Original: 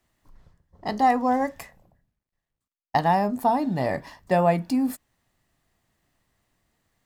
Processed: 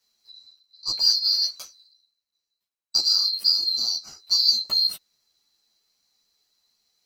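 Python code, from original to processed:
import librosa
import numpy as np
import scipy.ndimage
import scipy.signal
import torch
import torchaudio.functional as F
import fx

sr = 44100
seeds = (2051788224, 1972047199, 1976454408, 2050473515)

p1 = fx.band_swap(x, sr, width_hz=4000)
p2 = np.clip(p1, -10.0 ** (-24.5 / 20.0), 10.0 ** (-24.5 / 20.0))
p3 = p1 + (p2 * librosa.db_to_amplitude(-11.0))
p4 = fx.ensemble(p3, sr)
y = p4 * librosa.db_to_amplitude(2.0)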